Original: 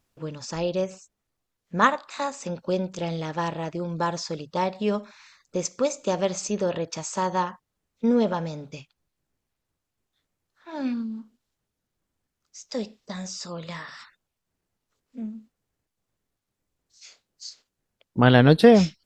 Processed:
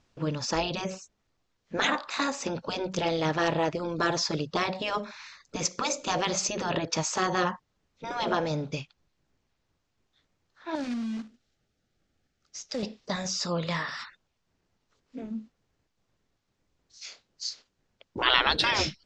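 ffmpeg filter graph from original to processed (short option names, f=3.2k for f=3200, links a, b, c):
-filter_complex "[0:a]asettb=1/sr,asplit=3[a][b][c];[a]atrim=end=10.754[d];[b]atrim=start=10.75:end=12.83,asetpts=PTS-STARTPTS,afade=t=in:d=0.004:c=qsin,afade=t=out:st=2.076:d=0.004:c=qsin,asuperstop=centerf=1000:order=4:qfactor=3.4,acompressor=threshold=-39dB:ratio=2.5:attack=3.2:release=140:knee=1:detection=peak,acrusher=bits=3:mode=log:mix=0:aa=0.000001[e];[c]atrim=start=12.826[f];[d][e]acrossfade=d=0.004:c1=hsin:c2=qsin[g];[g][f]acrossfade=d=0.004:c1=qsin:c2=hsin,afftfilt=real='re*lt(hypot(re,im),0.224)':imag='im*lt(hypot(re,im),0.224)':win_size=1024:overlap=0.75,lowpass=f=6.5k:w=0.5412,lowpass=f=6.5k:w=1.3066,volume=6dB"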